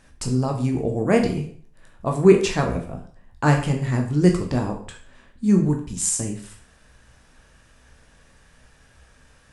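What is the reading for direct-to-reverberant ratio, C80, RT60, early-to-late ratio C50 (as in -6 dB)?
2.0 dB, 12.5 dB, 0.45 s, 8.5 dB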